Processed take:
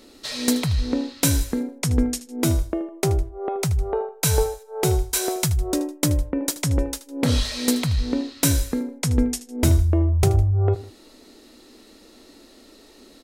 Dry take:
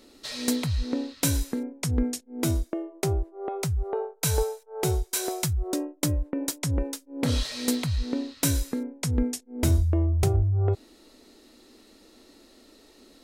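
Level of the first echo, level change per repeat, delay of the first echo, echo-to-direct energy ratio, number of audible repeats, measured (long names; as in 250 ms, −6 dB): −16.0 dB, −7.0 dB, 78 ms, −15.5 dB, 2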